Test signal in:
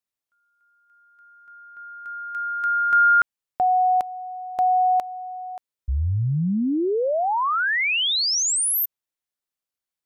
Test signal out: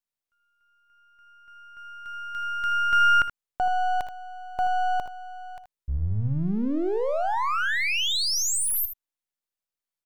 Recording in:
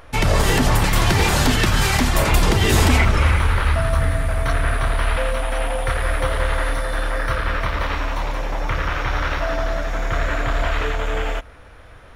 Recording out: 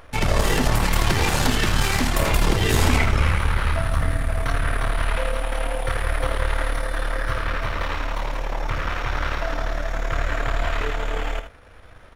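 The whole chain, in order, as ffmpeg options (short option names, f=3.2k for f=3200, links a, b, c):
-af "aeval=exprs='if(lt(val(0),0),0.447*val(0),val(0))':c=same,aecho=1:1:60|78:0.158|0.299,volume=-1.5dB"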